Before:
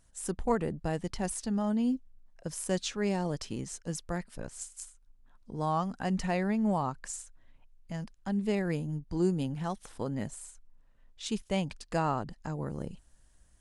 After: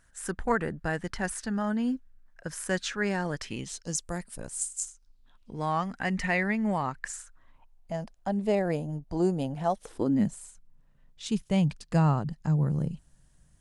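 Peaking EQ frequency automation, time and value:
peaking EQ +13.5 dB 0.78 oct
3.37 s 1.6 kHz
4.10 s 9.3 kHz
4.64 s 9.3 kHz
5.69 s 2 kHz
6.95 s 2 kHz
7.95 s 660 Hz
9.69 s 660 Hz
10.38 s 150 Hz

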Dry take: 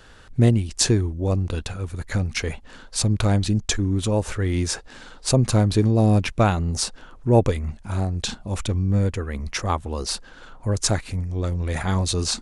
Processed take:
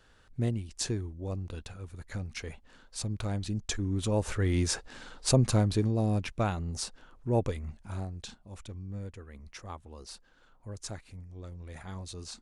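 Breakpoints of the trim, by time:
3.33 s -13.5 dB
4.39 s -4.5 dB
5.31 s -4.5 dB
6.07 s -11 dB
7.92 s -11 dB
8.40 s -19 dB

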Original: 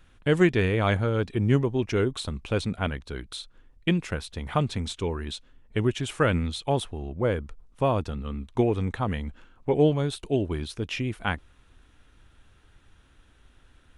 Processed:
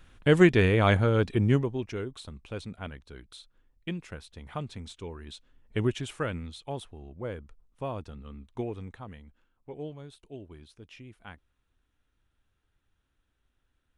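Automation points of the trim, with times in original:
1.35 s +1.5 dB
2.03 s -11 dB
5.20 s -11 dB
5.85 s -2 dB
6.36 s -11 dB
8.67 s -11 dB
9.27 s -18.5 dB

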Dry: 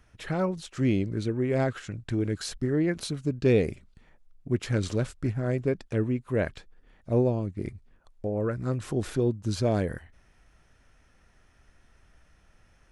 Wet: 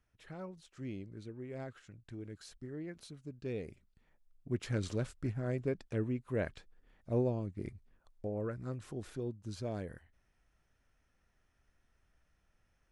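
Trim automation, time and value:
3.55 s -18 dB
4.61 s -8 dB
8.26 s -8 dB
9.00 s -14 dB

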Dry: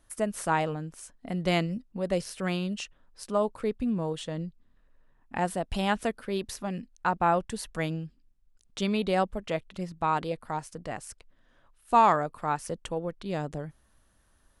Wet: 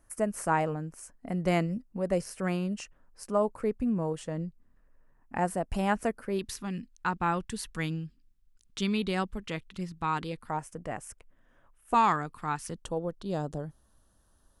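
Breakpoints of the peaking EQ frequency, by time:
peaking EQ -14 dB 0.68 oct
3.6 kHz
from 6.39 s 630 Hz
from 10.49 s 4.2 kHz
from 11.94 s 590 Hz
from 12.82 s 2.2 kHz

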